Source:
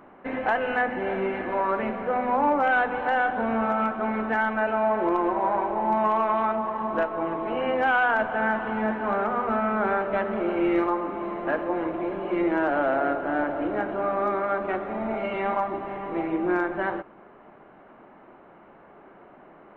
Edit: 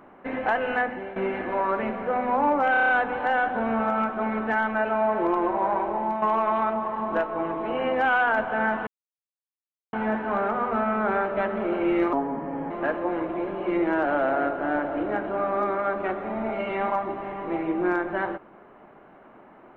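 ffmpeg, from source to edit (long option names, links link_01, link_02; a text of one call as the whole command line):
ffmpeg -i in.wav -filter_complex "[0:a]asplit=12[link_01][link_02][link_03][link_04][link_05][link_06][link_07][link_08][link_09][link_10][link_11][link_12];[link_01]atrim=end=1.16,asetpts=PTS-STARTPTS,afade=type=out:start_time=0.78:duration=0.38:silence=0.211349[link_13];[link_02]atrim=start=1.16:end=2.742,asetpts=PTS-STARTPTS,afade=type=in:duration=0.004:curve=hsin:silence=0.211349[link_14];[link_03]atrim=start=2.708:end=2.742[link_15];[link_04]atrim=start=2.708:end=2.742[link_16];[link_05]atrim=start=2.708:end=2.742[link_17];[link_06]atrim=start=2.708:end=2.742[link_18];[link_07]atrim=start=2.708:end=2.742[link_19];[link_08]atrim=start=2.708:end=6.04,asetpts=PTS-STARTPTS,afade=type=out:start_time=3.022:duration=0.31:silence=0.446684[link_20];[link_09]atrim=start=6.04:end=8.69,asetpts=PTS-STARTPTS,afade=type=in:duration=0.004:curve=hsin:silence=0.446684,afade=type=out:start_time=2.646:duration=0.004:curve=hsin,apad=pad_dur=1.06[link_21];[link_10]atrim=start=8.69:end=10.894,asetpts=PTS-STARTPTS,afade=type=in:duration=0.004:curve=hsin[link_22];[link_11]atrim=start=10.89:end=11.35,asetpts=PTS-STARTPTS,asetrate=35280,aresample=44100[link_23];[link_12]atrim=start=11.346[link_24];[link_13][link_14]concat=n=2:v=0:a=1[link_25];[link_25][link_15]acrossfade=duration=0.004:curve1=hsin:curve2=hsin[link_26];[link_26][link_16]acrossfade=duration=0.004:curve1=hsin:curve2=hsin[link_27];[link_27][link_17]acrossfade=duration=0.004:curve1=hsin:curve2=hsin[link_28];[link_28][link_18]acrossfade=duration=0.004:curve1=hsin:curve2=hsin[link_29];[link_29][link_19]acrossfade=duration=0.004:curve1=hsin:curve2=hsin[link_30];[link_20][link_21][link_22]concat=n=3:v=0:a=1[link_31];[link_30][link_31]acrossfade=duration=0.004:curve1=hsin:curve2=hsin[link_32];[link_32][link_23]acrossfade=duration=0.004:curve1=hsin:curve2=hsin[link_33];[link_33][link_24]acrossfade=duration=0.004:curve1=hsin:curve2=hsin" out.wav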